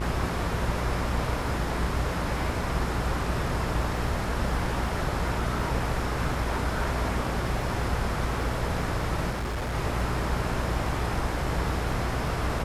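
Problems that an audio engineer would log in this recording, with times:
buzz 60 Hz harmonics 35 -32 dBFS
crackle 16 per s -37 dBFS
9.30–9.75 s: clipped -27 dBFS

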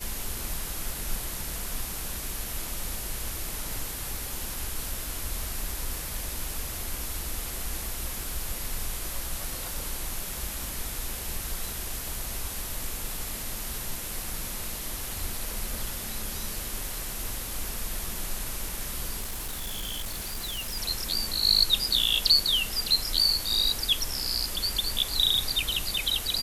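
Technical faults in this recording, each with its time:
19.20–20.78 s: clipped -29.5 dBFS

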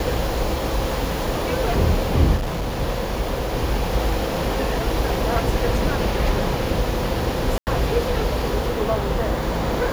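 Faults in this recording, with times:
2.36–2.80 s: clipped -21 dBFS
7.58–7.67 s: dropout 89 ms

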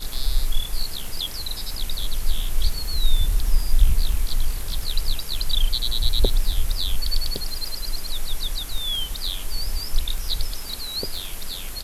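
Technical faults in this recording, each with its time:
crackle 14 per s

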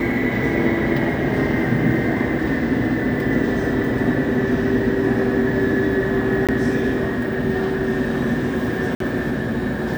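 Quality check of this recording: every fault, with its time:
6.47–6.49 s: dropout 17 ms
8.95–9.00 s: dropout 53 ms

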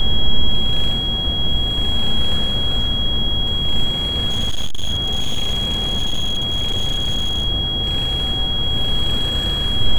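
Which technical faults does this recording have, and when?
whine 3.3 kHz -20 dBFS
4.27–7.48 s: clipped -14.5 dBFS

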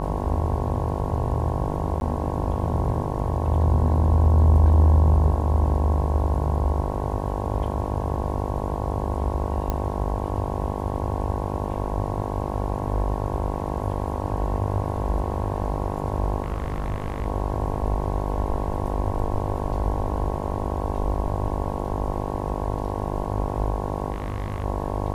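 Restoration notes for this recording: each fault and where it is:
buzz 50 Hz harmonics 22 -29 dBFS
2.00–2.01 s: dropout
9.70 s: pop -12 dBFS
16.42–17.26 s: clipped -22 dBFS
24.12–24.64 s: clipped -23 dBFS

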